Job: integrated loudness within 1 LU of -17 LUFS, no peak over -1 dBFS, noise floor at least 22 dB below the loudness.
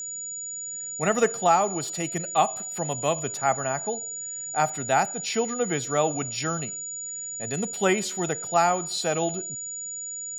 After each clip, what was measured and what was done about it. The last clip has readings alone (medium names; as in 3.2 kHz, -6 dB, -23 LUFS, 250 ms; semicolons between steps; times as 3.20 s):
steady tone 6.9 kHz; tone level -32 dBFS; loudness -26.5 LUFS; peak level -9.0 dBFS; loudness target -17.0 LUFS
-> band-stop 6.9 kHz, Q 30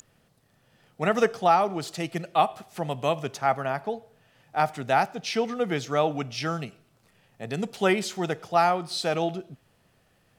steady tone not found; loudness -26.5 LUFS; peak level -9.5 dBFS; loudness target -17.0 LUFS
-> trim +9.5 dB; peak limiter -1 dBFS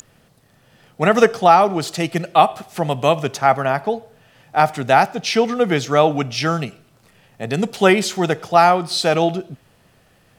loudness -17.5 LUFS; peak level -1.0 dBFS; noise floor -56 dBFS